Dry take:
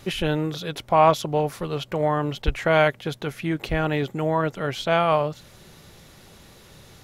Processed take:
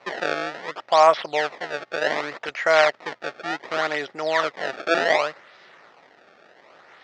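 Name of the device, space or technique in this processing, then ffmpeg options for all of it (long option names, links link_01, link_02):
circuit-bent sampling toy: -af "acrusher=samples=25:mix=1:aa=0.000001:lfo=1:lforange=40:lforate=0.67,highpass=510,equalizer=frequency=660:width_type=q:width=4:gain=4,equalizer=frequency=1300:width_type=q:width=4:gain=5,equalizer=frequency=1900:width_type=q:width=4:gain=8,lowpass=frequency=5200:width=0.5412,lowpass=frequency=5200:width=1.3066"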